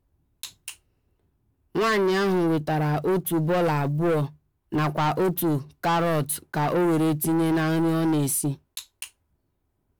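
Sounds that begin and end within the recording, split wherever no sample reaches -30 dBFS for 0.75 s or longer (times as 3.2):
1.75–9.04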